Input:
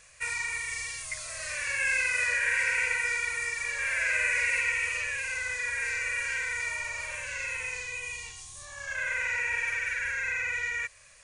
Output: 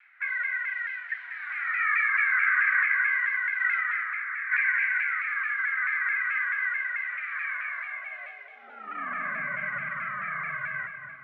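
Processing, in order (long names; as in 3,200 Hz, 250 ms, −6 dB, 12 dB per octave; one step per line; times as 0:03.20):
0:03.60–0:04.52: compressor whose output falls as the input rises −32 dBFS, ratio −0.5
single-sideband voice off tune −340 Hz 190–2,900 Hz
high-pass filter sweep 1,700 Hz → 79 Hz, 0:07.32–0:10.36
on a send at −6 dB: convolution reverb RT60 2.0 s, pre-delay 173 ms
on the sum: pitch modulation by a square or saw wave saw down 4.6 Hz, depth 100 cents
level −2.5 dB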